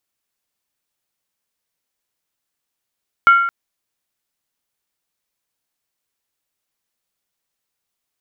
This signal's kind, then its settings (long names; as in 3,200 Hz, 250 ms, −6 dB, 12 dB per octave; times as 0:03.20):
struck skin length 0.22 s, lowest mode 1,380 Hz, decay 0.86 s, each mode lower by 12 dB, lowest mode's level −4.5 dB